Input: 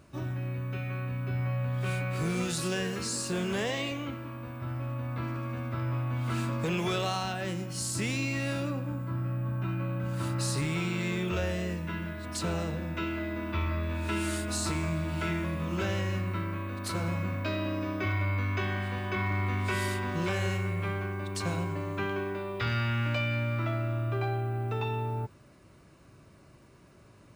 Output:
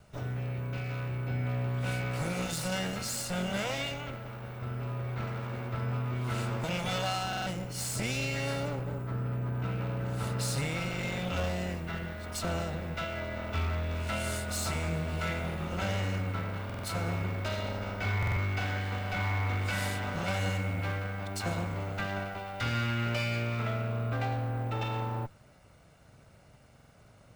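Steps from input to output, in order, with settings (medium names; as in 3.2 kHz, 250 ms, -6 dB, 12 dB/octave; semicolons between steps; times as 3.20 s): comb filter that takes the minimum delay 1.4 ms; buffer glitch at 7.28/16.65/18.18/26.75 s, samples 2048, times 3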